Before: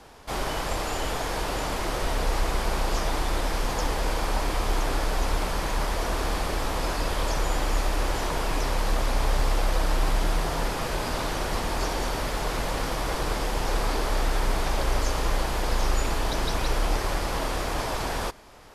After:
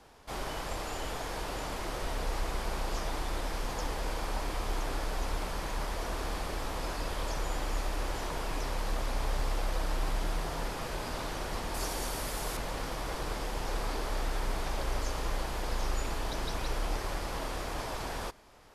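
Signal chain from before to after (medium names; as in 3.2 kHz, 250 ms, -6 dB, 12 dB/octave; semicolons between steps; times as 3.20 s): 11.74–12.57 s: peaking EQ 11 kHz +10.5 dB 1.4 oct; trim -8 dB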